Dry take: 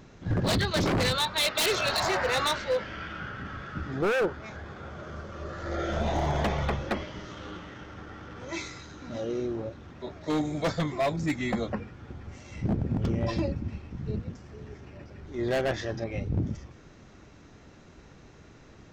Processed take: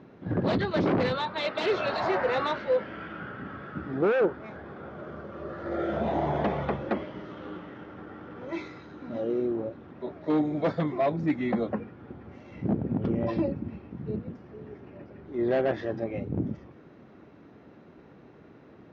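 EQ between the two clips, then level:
high-pass filter 250 Hz 12 dB per octave
Bessel low-pass filter 3,300 Hz, order 4
spectral tilt −3 dB per octave
0.0 dB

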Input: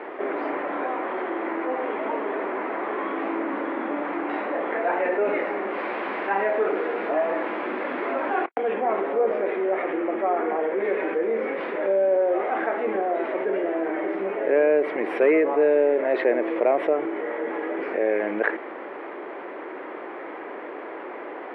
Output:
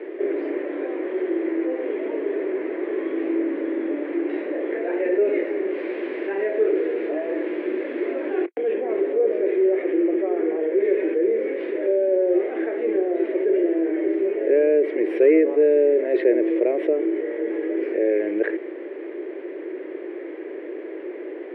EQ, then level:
high-pass with resonance 350 Hz, resonance Q 4.2
flat-topped bell 1,000 Hz −12 dB 1.2 octaves
−4.0 dB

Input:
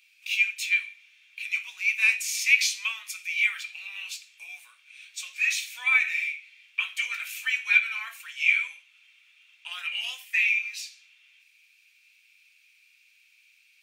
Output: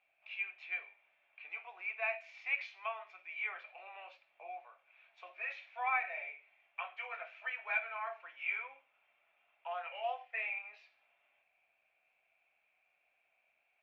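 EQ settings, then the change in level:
low-pass with resonance 680 Hz, resonance Q 5.6
high-frequency loss of the air 200 metres
+8.0 dB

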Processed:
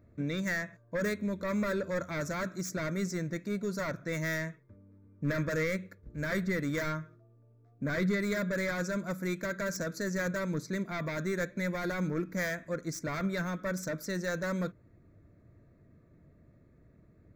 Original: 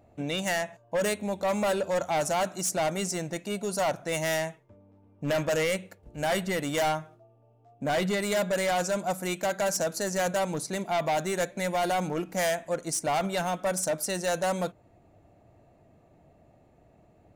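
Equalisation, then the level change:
bass and treble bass +2 dB, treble −4 dB
parametric band 4,900 Hz −5.5 dB 0.95 octaves
phaser with its sweep stopped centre 2,900 Hz, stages 6
0.0 dB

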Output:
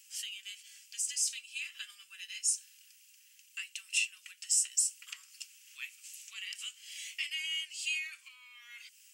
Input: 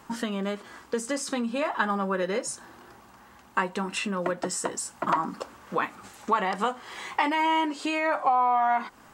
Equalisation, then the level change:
elliptic high-pass filter 2,700 Hz, stop band 70 dB
parametric band 3,800 Hz −11 dB 0.55 octaves
+5.5 dB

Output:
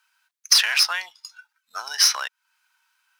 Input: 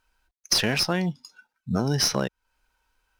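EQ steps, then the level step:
high-pass filter 1,100 Hz 24 dB per octave
+6.5 dB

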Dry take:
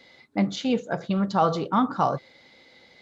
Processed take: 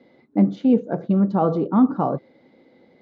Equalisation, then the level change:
resonant band-pass 280 Hz, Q 1.2
+9.0 dB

